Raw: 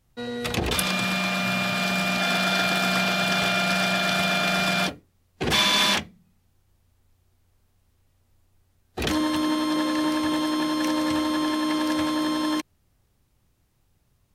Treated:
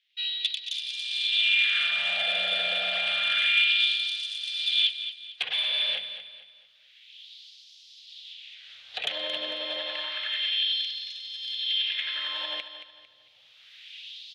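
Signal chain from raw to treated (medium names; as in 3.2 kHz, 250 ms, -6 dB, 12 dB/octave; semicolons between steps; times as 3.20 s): recorder AGC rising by 20 dB/s; low-pass that closes with the level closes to 2.6 kHz, closed at -20.5 dBFS; FFT filter 130 Hz 0 dB, 340 Hz -24 dB, 510 Hz -9 dB, 1 kHz -25 dB, 3.4 kHz +9 dB, 8.3 kHz -26 dB; 5.44–9.04 s: compression 1.5:1, threshold -35 dBFS, peak gain reduction 6.5 dB; saturation -15.5 dBFS, distortion -26 dB; LFO high-pass sine 0.29 Hz 550–5400 Hz; feedback delay 225 ms, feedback 37%, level -11 dB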